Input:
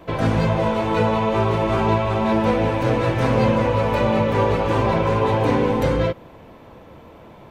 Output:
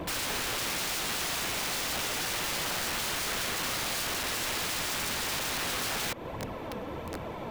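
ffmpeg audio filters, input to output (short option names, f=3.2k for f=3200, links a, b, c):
-filter_complex "[0:a]lowshelf=f=63:g=-5,acompressor=threshold=-26dB:ratio=16,aphaser=in_gain=1:out_gain=1:delay=4.7:decay=0.43:speed=1.4:type=triangular,asplit=3[a][b][c];[a]afade=t=out:st=3.4:d=0.02[d];[b]afreqshift=-16,afade=t=in:st=3.4:d=0.02,afade=t=out:st=5.57:d=0.02[e];[c]afade=t=in:st=5.57:d=0.02[f];[d][e][f]amix=inputs=3:normalize=0,aeval=exprs='(mod(44.7*val(0)+1,2)-1)/44.7':c=same,volume=5.5dB"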